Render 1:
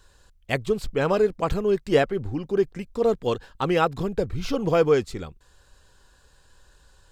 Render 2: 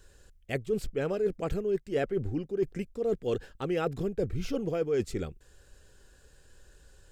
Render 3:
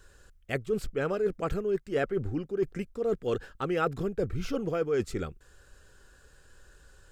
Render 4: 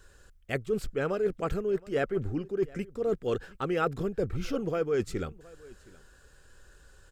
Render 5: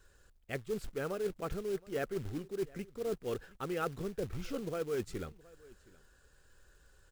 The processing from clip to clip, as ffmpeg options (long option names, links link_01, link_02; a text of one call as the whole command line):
ffmpeg -i in.wav -af "equalizer=frequency=400:width_type=o:width=0.67:gain=4,equalizer=frequency=1000:width_type=o:width=0.67:gain=-11,equalizer=frequency=4000:width_type=o:width=0.67:gain=-6,areverse,acompressor=threshold=-27dB:ratio=5,areverse" out.wav
ffmpeg -i in.wav -af "equalizer=frequency=1300:width=1.9:gain=8" out.wav
ffmpeg -i in.wav -af "aecho=1:1:719:0.075" out.wav
ffmpeg -i in.wav -af "acrusher=bits=4:mode=log:mix=0:aa=0.000001,volume=-7.5dB" out.wav